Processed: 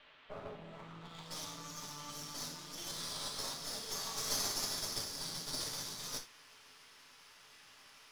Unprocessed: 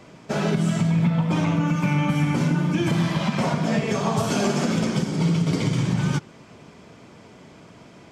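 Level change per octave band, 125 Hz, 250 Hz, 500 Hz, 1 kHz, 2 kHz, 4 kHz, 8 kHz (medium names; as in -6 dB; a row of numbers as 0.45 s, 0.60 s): -33.0 dB, -32.0 dB, -22.0 dB, -18.5 dB, -19.0 dB, -5.0 dB, -2.5 dB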